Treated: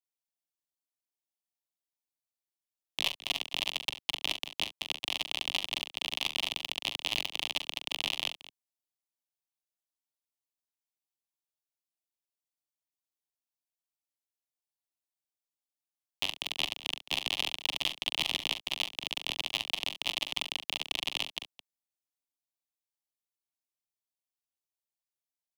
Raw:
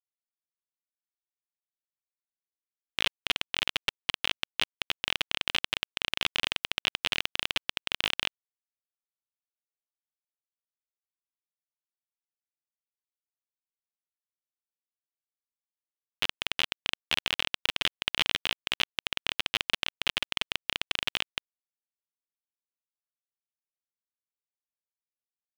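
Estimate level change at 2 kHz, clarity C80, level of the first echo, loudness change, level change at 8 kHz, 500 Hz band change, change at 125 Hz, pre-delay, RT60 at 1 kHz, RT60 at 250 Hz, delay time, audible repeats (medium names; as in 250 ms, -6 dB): -5.0 dB, no reverb, -8.5 dB, -2.5 dB, +0.5 dB, -3.0 dB, -4.5 dB, no reverb, no reverb, no reverb, 42 ms, 2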